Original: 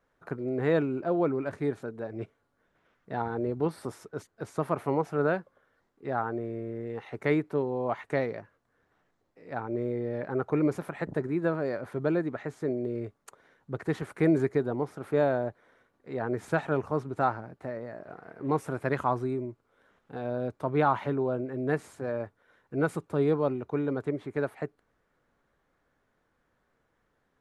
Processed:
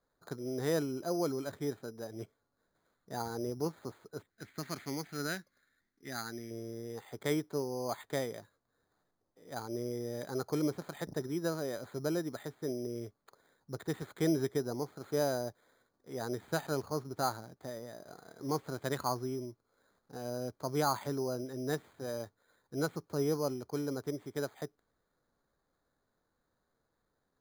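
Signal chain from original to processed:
low-pass that shuts in the quiet parts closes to 1,800 Hz
bad sample-rate conversion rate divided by 8×, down filtered, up hold
0:04.30–0:06.51: octave-band graphic EQ 125/250/500/1,000/2,000 Hz −4/+3/−10/−10/+12 dB
level −6.5 dB

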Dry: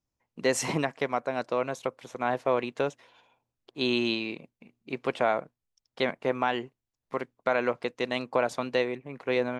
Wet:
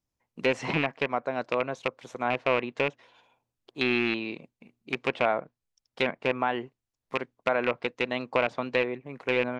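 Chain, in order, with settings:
loose part that buzzes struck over −33 dBFS, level −15 dBFS
treble cut that deepens with the level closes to 2,700 Hz, closed at −23.5 dBFS

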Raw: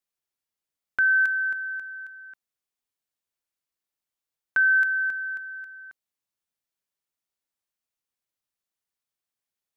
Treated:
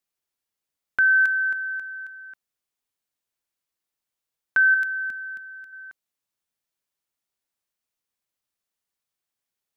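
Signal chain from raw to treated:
0:04.74–0:05.73: octave-band graphic EQ 250/500/1,000/2,000 Hz +7/−7/−8/−3 dB
level +2.5 dB

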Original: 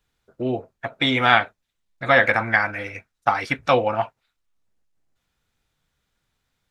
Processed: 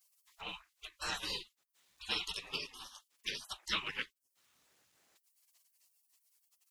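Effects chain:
gate on every frequency bin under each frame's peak −30 dB weak
one half of a high-frequency compander encoder only
level +6 dB

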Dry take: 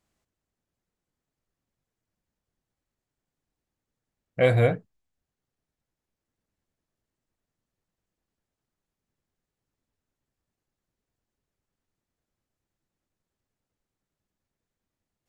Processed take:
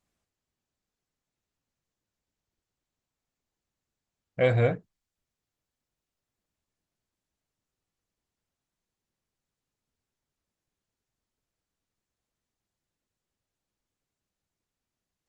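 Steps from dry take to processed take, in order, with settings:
level −2.5 dB
Opus 16 kbit/s 48,000 Hz

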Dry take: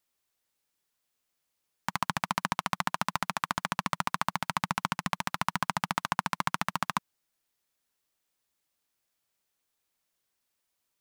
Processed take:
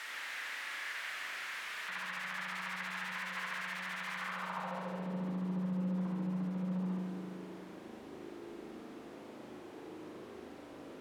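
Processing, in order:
sign of each sample alone
band-pass filter sweep 1,800 Hz → 310 Hz, 0:04.14–0:05.19
spring reverb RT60 2.1 s, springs 38 ms, chirp 20 ms, DRR −1.5 dB
level +4 dB

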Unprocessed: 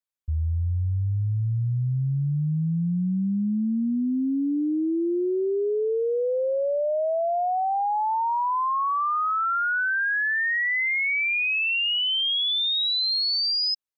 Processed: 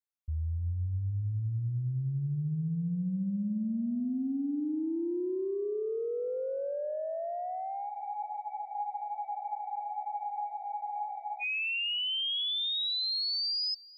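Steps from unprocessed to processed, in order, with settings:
tape delay 290 ms, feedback 30%, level −9 dB, low-pass 1,500 Hz
dynamic equaliser 970 Hz, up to −6 dB, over −36 dBFS, Q 1
frozen spectrum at 0:07.92, 3.49 s
level −7.5 dB

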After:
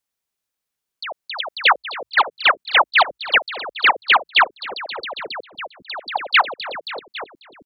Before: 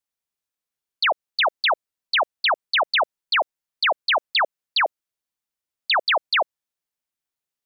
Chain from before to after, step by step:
echo with shifted repeats 271 ms, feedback 63%, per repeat −58 Hz, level −9 dB
output level in coarse steps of 18 dB
level +7 dB

